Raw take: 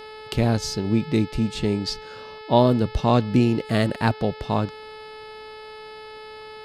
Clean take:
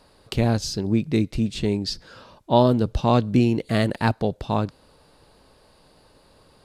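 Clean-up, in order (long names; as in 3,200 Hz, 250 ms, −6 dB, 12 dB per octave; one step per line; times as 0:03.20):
hum removal 432.4 Hz, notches 12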